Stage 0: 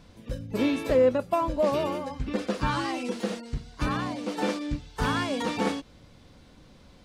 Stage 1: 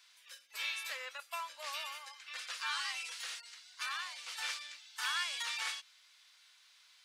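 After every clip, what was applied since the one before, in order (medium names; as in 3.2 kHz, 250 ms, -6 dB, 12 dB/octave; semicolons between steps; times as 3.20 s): Bessel high-pass 2.1 kHz, order 4; trim +1 dB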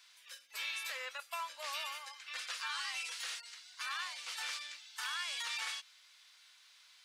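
peak limiter -31.5 dBFS, peak gain reduction 7 dB; trim +1.5 dB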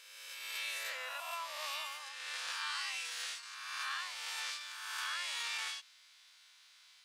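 reverse spectral sustain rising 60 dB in 1.62 s; trim -3 dB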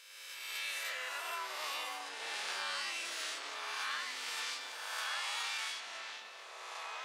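ever faster or slower copies 101 ms, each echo -5 st, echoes 3, each echo -6 dB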